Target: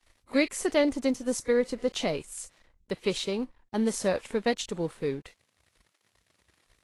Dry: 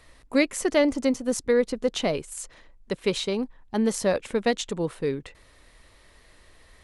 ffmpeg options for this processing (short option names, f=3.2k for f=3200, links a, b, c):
-af "aeval=exprs='sgn(val(0))*max(abs(val(0))-0.00282,0)':c=same,volume=-3dB" -ar 32000 -c:a libvorbis -b:a 32k